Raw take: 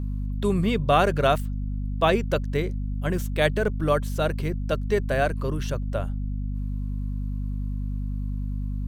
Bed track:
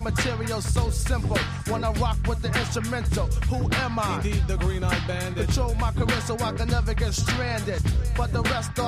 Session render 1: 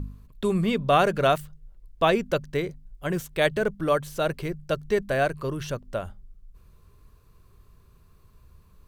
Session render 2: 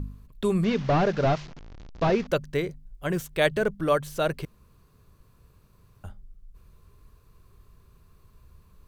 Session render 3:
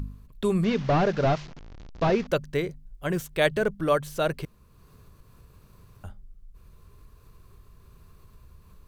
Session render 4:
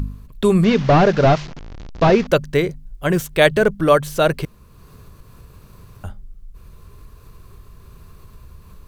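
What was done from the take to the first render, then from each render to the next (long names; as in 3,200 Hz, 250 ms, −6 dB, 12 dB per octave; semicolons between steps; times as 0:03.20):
hum removal 50 Hz, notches 5
0:00.64–0:02.27: linear delta modulator 32 kbit/s, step −37 dBFS; 0:04.45–0:06.04: fill with room tone
upward compression, threshold −44 dBFS
level +9.5 dB; brickwall limiter −1 dBFS, peak gain reduction 1 dB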